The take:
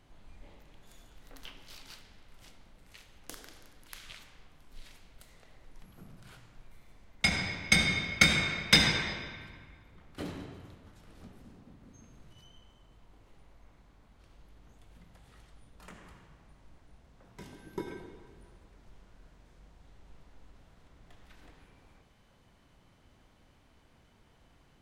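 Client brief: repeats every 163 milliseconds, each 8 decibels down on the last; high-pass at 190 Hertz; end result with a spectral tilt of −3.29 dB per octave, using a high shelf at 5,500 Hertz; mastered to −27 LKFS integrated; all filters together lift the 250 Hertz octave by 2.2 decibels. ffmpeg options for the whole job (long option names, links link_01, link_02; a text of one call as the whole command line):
ffmpeg -i in.wav -af "highpass=190,equalizer=frequency=250:width_type=o:gain=6,highshelf=frequency=5500:gain=-9,aecho=1:1:163|326|489|652|815:0.398|0.159|0.0637|0.0255|0.0102,volume=2dB" out.wav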